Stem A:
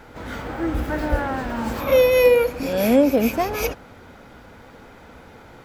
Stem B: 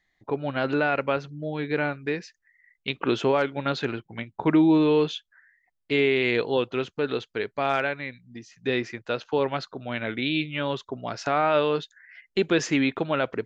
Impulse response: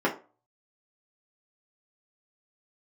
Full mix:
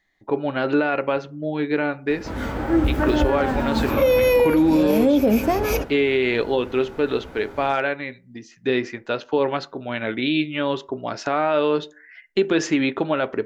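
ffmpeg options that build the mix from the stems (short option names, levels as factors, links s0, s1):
-filter_complex "[0:a]lowshelf=f=240:g=7,adelay=2100,volume=1,asplit=2[s0][s1];[s1]volume=0.075[s2];[1:a]volume=1.26,asplit=2[s3][s4];[s4]volume=0.0841[s5];[2:a]atrim=start_sample=2205[s6];[s2][s5]amix=inputs=2:normalize=0[s7];[s7][s6]afir=irnorm=-1:irlink=0[s8];[s0][s3][s8]amix=inputs=3:normalize=0,alimiter=limit=0.335:level=0:latency=1:release=84"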